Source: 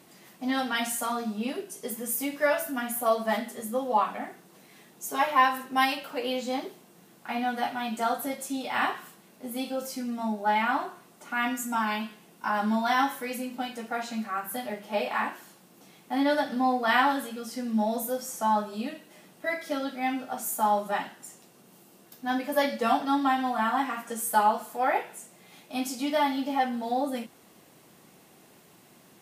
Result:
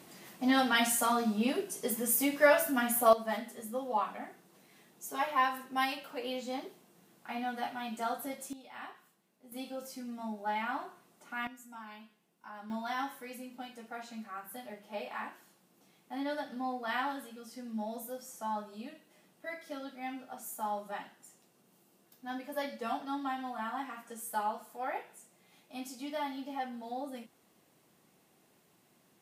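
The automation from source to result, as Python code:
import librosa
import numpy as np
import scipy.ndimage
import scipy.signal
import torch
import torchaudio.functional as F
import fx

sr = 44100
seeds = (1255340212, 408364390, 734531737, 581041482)

y = fx.gain(x, sr, db=fx.steps((0.0, 1.0), (3.13, -7.5), (8.53, -19.0), (9.52, -9.5), (11.47, -20.0), (12.7, -11.5)))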